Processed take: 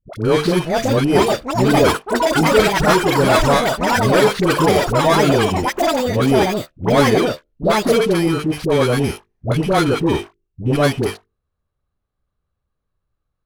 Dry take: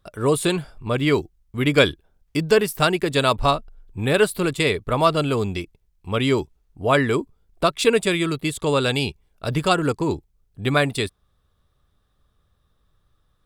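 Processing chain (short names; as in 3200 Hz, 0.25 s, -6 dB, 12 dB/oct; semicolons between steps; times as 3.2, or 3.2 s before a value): FFT order left unsorted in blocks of 16 samples; LPF 8700 Hz 12 dB/oct; tone controls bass -1 dB, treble -10 dB; notches 50/100/150/200/250/300/350/400/450 Hz; sample leveller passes 3; dispersion highs, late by 81 ms, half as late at 640 Hz; echoes that change speed 0.535 s, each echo +7 st, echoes 3; gain -2.5 dB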